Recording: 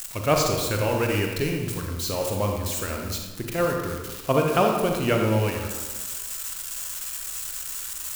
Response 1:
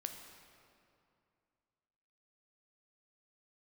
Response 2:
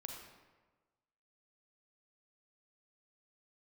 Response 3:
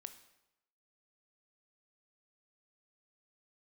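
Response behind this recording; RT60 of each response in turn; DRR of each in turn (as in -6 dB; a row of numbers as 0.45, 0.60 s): 2; 2.5, 1.3, 0.90 s; 4.5, 1.0, 9.5 dB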